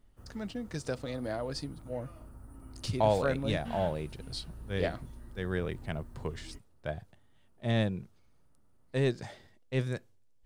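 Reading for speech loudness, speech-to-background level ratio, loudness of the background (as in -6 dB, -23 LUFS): -34.5 LUFS, 15.5 dB, -50.0 LUFS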